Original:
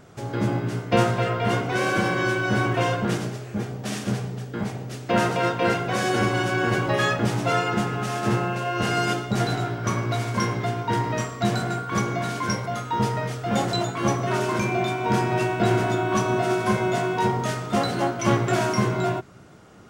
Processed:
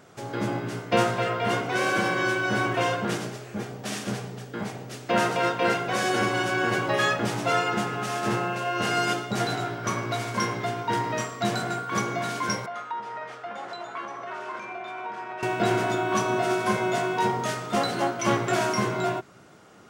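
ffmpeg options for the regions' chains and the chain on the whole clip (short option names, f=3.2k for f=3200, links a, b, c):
-filter_complex "[0:a]asettb=1/sr,asplit=3[a][b][c];[a]atrim=end=12.664[d];[b]atrim=start=12.66:end=15.43,asetpts=PTS-STARTPTS,afade=t=in:d=0.004:c=qsin,afade=t=out:st=2.766:d=0.004:c=qsin,acompressor=threshold=-25dB:ratio=12:attack=3.2:release=140:knee=1:detection=peak,bandpass=f=1.2k:t=q:w=0.83[e];[c]atrim=start=15.426[f];[d][e]acrossfade=d=0.004:c1=hsin:c2=qsin[g];[g][f]acrossfade=d=0.004:c1=qsin:c2=hsin,highpass=f=170:p=1,lowshelf=f=370:g=-3.5"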